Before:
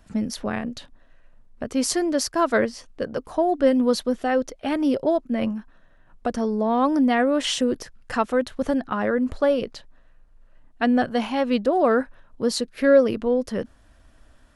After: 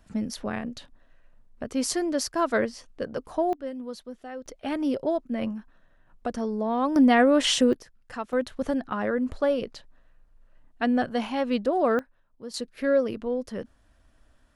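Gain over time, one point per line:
-4 dB
from 3.53 s -16.5 dB
from 4.46 s -5 dB
from 6.96 s +1.5 dB
from 7.73 s -11 dB
from 8.33 s -4 dB
from 11.99 s -16.5 dB
from 12.54 s -7 dB

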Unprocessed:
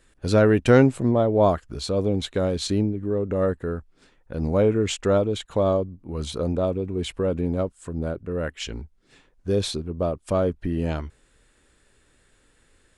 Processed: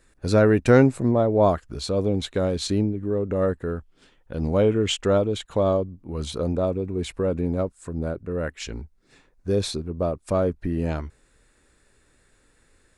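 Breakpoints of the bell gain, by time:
bell 3100 Hz 0.25 oct
-9 dB
from 1.47 s -2 dB
from 3.7 s +7.5 dB
from 5.01 s -0.5 dB
from 6.51 s -7.5 dB

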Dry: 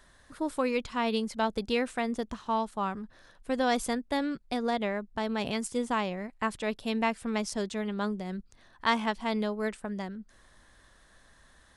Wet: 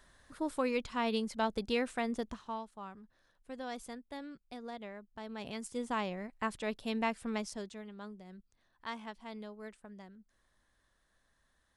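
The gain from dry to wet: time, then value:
2.28 s -4 dB
2.68 s -15 dB
5.09 s -15 dB
6.01 s -5 dB
7.32 s -5 dB
7.9 s -15.5 dB

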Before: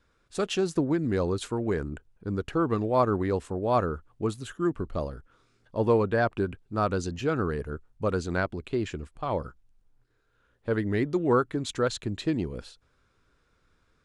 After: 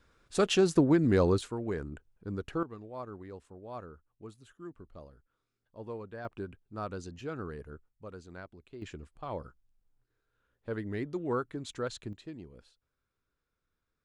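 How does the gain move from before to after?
+2 dB
from 1.41 s -6.5 dB
from 2.63 s -18.5 dB
from 6.25 s -11.5 dB
from 7.89 s -18.5 dB
from 8.82 s -9 dB
from 12.13 s -17 dB

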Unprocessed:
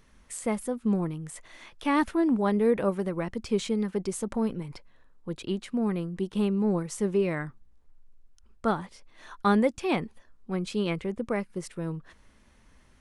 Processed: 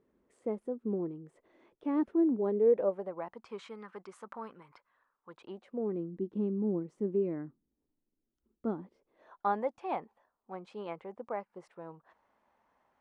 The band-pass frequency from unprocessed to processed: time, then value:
band-pass, Q 2.4
2.46 s 380 Hz
3.63 s 1200 Hz
5.29 s 1200 Hz
6.03 s 300 Hz
8.83 s 300 Hz
9.54 s 810 Hz

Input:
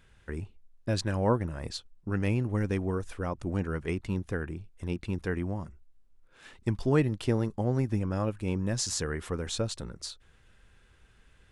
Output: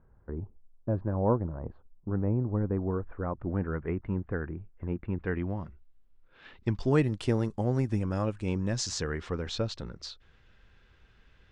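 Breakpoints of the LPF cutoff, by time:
LPF 24 dB/oct
2.46 s 1100 Hz
3.62 s 1800 Hz
5.04 s 1800 Hz
5.52 s 4000 Hz
6.54 s 4000 Hz
6.99 s 9400 Hz
8.09 s 9400 Hz
9.39 s 5400 Hz

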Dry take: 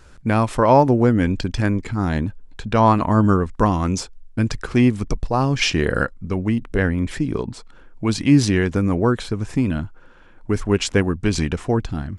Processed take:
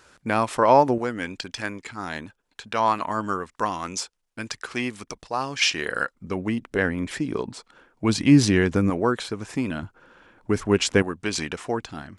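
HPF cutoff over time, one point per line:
HPF 6 dB/oct
500 Hz
from 0.98 s 1300 Hz
from 6.15 s 360 Hz
from 8.04 s 120 Hz
from 8.9 s 450 Hz
from 9.83 s 170 Hz
from 11.02 s 700 Hz

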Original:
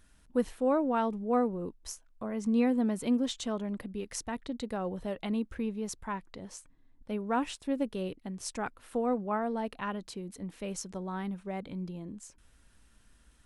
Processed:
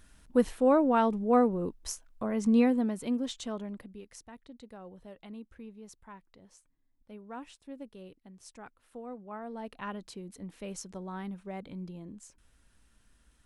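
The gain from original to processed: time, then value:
2.55 s +4 dB
2.97 s -3 dB
3.61 s -3 dB
4.22 s -13 dB
9.17 s -13 dB
9.86 s -3 dB

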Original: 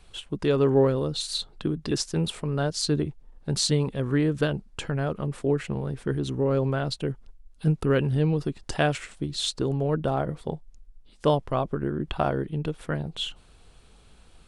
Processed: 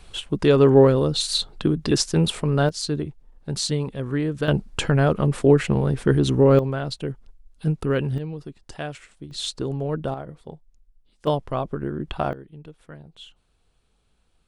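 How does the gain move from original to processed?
+6.5 dB
from 2.69 s -1 dB
from 4.48 s +9 dB
from 6.59 s 0 dB
from 8.18 s -8.5 dB
from 9.31 s -1 dB
from 10.14 s -8 dB
from 11.27 s 0 dB
from 12.33 s -13 dB

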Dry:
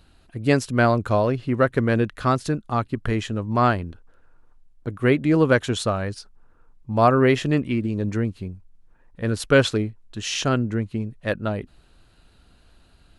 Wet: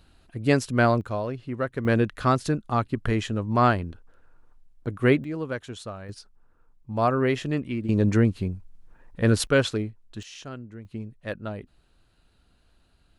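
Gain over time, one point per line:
-2 dB
from 1.01 s -9 dB
from 1.85 s -1 dB
from 5.24 s -13.5 dB
from 6.09 s -6 dB
from 7.89 s +4 dB
from 9.47 s -4.5 dB
from 10.23 s -17 dB
from 10.85 s -8 dB

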